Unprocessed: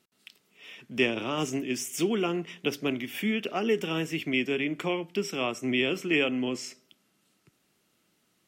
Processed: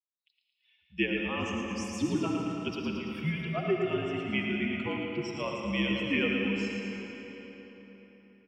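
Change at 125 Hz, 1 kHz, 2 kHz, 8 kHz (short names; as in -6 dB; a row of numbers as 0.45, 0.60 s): +2.5, -2.0, -2.0, -9.0 dB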